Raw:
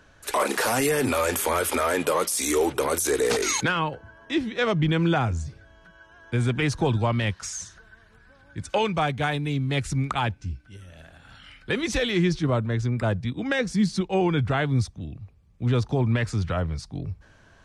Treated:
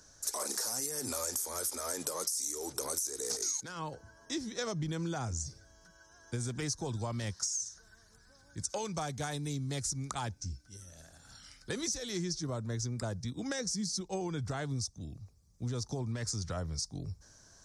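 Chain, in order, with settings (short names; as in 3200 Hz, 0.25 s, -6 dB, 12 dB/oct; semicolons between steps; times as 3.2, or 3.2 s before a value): resonant high shelf 4000 Hz +13 dB, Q 3; compressor 12:1, threshold -24 dBFS, peak gain reduction 19.5 dB; gain -8 dB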